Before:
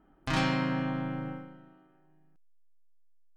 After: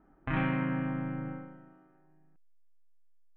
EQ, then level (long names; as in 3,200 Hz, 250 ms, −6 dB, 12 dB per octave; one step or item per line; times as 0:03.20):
inverse Chebyshev low-pass filter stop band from 4,600 Hz, stop band 40 dB
dynamic equaliser 760 Hz, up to −5 dB, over −43 dBFS, Q 0.74
0.0 dB